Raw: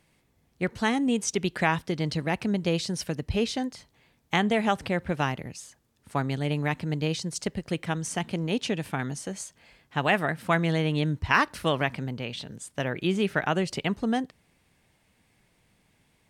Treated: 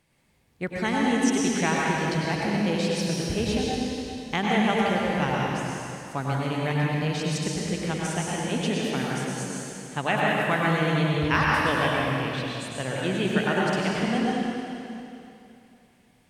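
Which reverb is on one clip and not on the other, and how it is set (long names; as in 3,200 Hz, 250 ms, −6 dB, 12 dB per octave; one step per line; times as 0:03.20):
dense smooth reverb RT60 2.8 s, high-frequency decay 0.95×, pre-delay 85 ms, DRR −4.5 dB
level −3 dB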